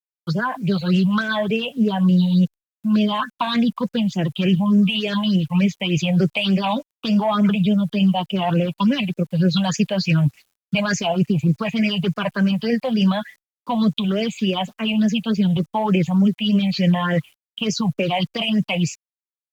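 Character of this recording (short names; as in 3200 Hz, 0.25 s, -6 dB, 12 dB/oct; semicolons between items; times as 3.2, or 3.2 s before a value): phasing stages 6, 3.4 Hz, lowest notch 360–1100 Hz; a quantiser's noise floor 10-bit, dither none; Opus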